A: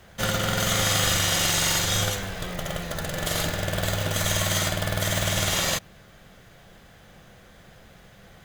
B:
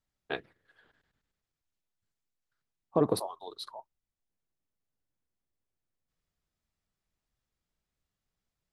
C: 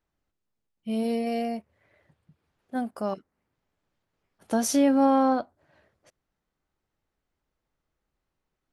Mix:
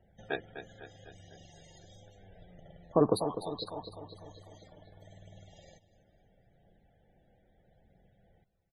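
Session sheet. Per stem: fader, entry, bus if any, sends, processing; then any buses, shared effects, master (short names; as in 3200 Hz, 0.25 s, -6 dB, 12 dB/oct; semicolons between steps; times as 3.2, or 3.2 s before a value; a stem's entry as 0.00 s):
-15.0 dB, 0.00 s, no send, echo send -17 dB, EQ curve 790 Hz 0 dB, 1100 Hz -17 dB, 1800 Hz -7 dB; compressor 12:1, threshold -36 dBFS, peak gain reduction 14.5 dB; phaser 0.75 Hz, delay 3.9 ms, feedback 24%
+1.0 dB, 0.00 s, no send, echo send -10.5 dB, dry
off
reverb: off
echo: feedback echo 0.251 s, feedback 57%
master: loudest bins only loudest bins 64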